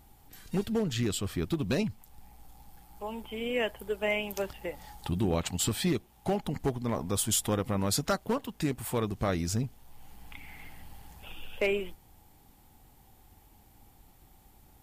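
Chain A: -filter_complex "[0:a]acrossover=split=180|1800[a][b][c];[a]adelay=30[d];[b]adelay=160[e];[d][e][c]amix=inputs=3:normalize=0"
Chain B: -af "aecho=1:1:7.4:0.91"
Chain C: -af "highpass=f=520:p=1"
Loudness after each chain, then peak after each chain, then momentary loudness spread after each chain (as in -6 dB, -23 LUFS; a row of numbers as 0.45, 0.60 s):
-32.5, -29.0, -34.5 LUFS; -15.5, -12.5, -16.5 dBFS; 19, 16, 17 LU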